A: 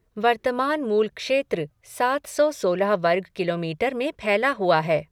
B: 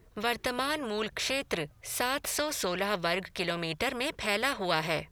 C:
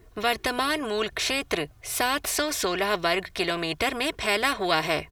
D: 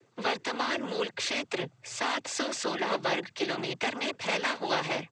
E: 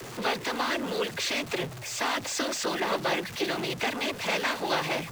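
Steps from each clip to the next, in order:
spectral compressor 2:1; gain -6.5 dB
comb 2.8 ms, depth 40%; gain +4.5 dB
noise vocoder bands 16; gain -4.5 dB
zero-crossing step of -35 dBFS

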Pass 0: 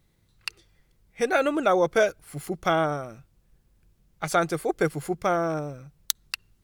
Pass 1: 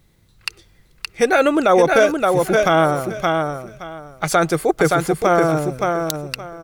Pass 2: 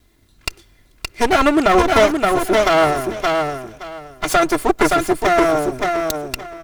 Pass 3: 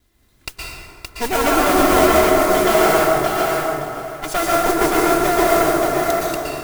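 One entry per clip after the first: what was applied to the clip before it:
on a send: feedback echo 0.57 s, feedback 20%, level -5 dB; on the sum: maximiser +12.5 dB; gain -3.5 dB
minimum comb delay 2.9 ms; gain +2.5 dB
modulation noise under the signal 10 dB; plate-style reverb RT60 2.4 s, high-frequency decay 0.45×, pre-delay 0.105 s, DRR -5.5 dB; gain -7 dB

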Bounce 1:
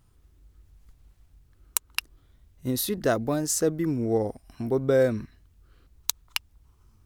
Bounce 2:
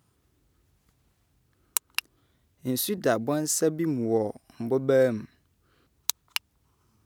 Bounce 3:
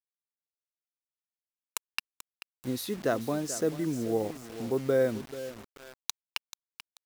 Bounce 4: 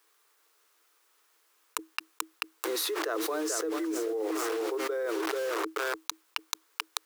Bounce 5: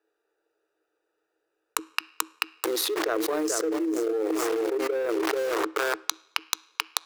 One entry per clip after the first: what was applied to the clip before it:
HPF 130 Hz 12 dB/oct
high shelf 7800 Hz -10.5 dB; feedback echo 0.436 s, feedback 24%, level -14 dB; bit-crush 7-bit; gain -4 dB
rippled Chebyshev high-pass 310 Hz, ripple 9 dB; fast leveller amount 100%; gain -4 dB
Wiener smoothing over 41 samples; on a send at -19.5 dB: reverb RT60 0.85 s, pre-delay 3 ms; on the sum: gain +6.5 dB

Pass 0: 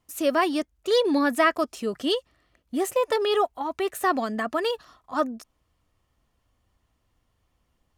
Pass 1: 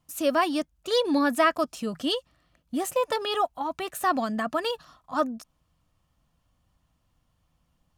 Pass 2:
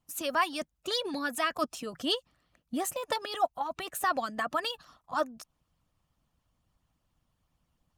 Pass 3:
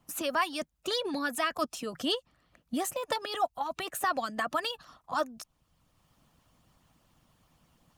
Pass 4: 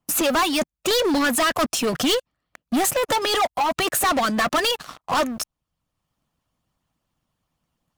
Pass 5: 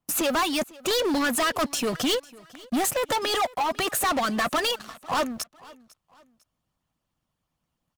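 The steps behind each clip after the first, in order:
thirty-one-band EQ 160 Hz +10 dB, 400 Hz -10 dB, 2000 Hz -5 dB
harmonic-percussive split harmonic -13 dB
three-band squash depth 40%
sample leveller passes 5
feedback echo 0.5 s, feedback 35%, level -22.5 dB; gain -4 dB

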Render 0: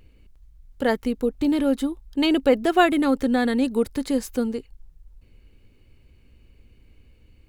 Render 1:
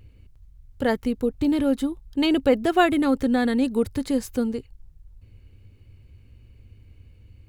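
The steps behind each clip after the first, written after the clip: bell 96 Hz +14 dB 0.97 oct; gain -1.5 dB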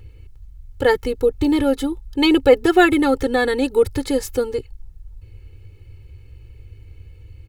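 comb 2.3 ms, depth 90%; gain +4 dB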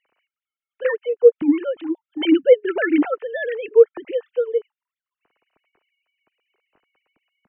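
sine-wave speech; gain -1 dB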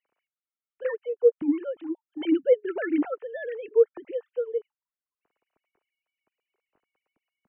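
high shelf 2300 Hz -11.5 dB; gain -7 dB

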